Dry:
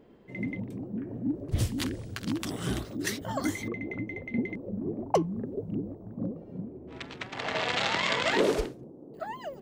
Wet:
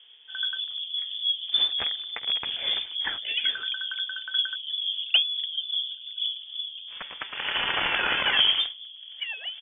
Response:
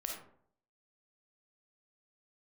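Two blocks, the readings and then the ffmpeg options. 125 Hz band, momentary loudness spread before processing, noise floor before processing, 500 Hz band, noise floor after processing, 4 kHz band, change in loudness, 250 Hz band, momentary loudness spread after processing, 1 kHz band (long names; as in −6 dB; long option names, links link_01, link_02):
below −15 dB, 14 LU, −48 dBFS, −12.0 dB, −45 dBFS, +15.5 dB, +6.0 dB, below −15 dB, 12 LU, −1.5 dB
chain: -filter_complex "[0:a]asplit=2[link_01][link_02];[link_02]adelay=1633,volume=-27dB,highshelf=frequency=4000:gain=-36.7[link_03];[link_01][link_03]amix=inputs=2:normalize=0,lowpass=frequency=3100:width_type=q:width=0.5098,lowpass=frequency=3100:width_type=q:width=0.6013,lowpass=frequency=3100:width_type=q:width=0.9,lowpass=frequency=3100:width_type=q:width=2.563,afreqshift=-3600,volume=3.5dB"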